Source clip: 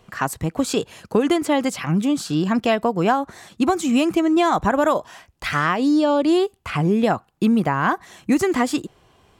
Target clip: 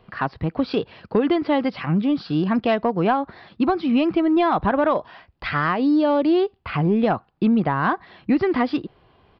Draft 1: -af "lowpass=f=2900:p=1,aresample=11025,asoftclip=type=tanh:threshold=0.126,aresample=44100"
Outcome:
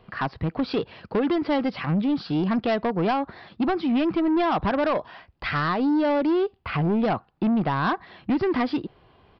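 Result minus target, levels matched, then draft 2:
saturation: distortion +14 dB
-af "lowpass=f=2900:p=1,aresample=11025,asoftclip=type=tanh:threshold=0.422,aresample=44100"

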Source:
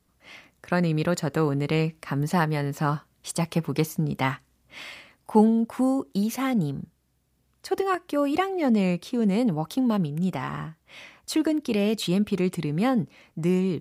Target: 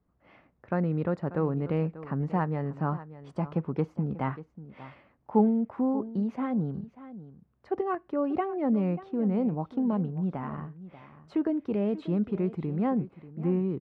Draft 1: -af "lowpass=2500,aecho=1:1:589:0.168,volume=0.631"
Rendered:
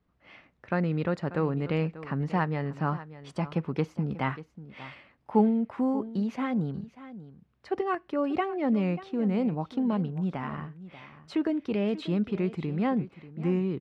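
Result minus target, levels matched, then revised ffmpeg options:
2 kHz band +6.5 dB
-af "lowpass=1200,aecho=1:1:589:0.168,volume=0.631"

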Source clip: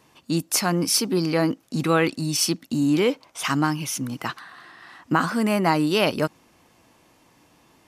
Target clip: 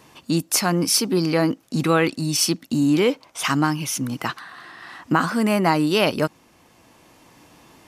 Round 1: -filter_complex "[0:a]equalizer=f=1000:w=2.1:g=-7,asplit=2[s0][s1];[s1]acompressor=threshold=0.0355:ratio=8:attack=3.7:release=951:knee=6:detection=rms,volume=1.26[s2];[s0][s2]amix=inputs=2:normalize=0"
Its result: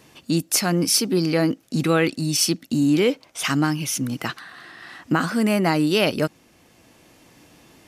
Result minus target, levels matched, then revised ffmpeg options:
1 kHz band -3.5 dB
-filter_complex "[0:a]asplit=2[s0][s1];[s1]acompressor=threshold=0.0355:ratio=8:attack=3.7:release=951:knee=6:detection=rms,volume=1.26[s2];[s0][s2]amix=inputs=2:normalize=0"

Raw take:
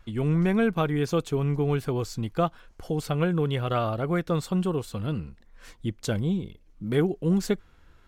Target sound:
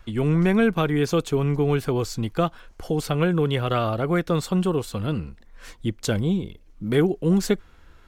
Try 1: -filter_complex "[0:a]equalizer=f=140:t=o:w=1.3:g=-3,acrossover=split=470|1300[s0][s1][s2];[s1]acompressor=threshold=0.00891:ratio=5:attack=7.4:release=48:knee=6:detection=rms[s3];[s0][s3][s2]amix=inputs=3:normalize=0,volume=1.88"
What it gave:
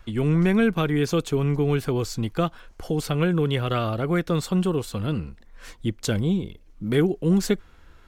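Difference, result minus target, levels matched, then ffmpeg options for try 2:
compression: peak gain reduction +7 dB
-filter_complex "[0:a]equalizer=f=140:t=o:w=1.3:g=-3,acrossover=split=470|1300[s0][s1][s2];[s1]acompressor=threshold=0.0237:ratio=5:attack=7.4:release=48:knee=6:detection=rms[s3];[s0][s3][s2]amix=inputs=3:normalize=0,volume=1.88"

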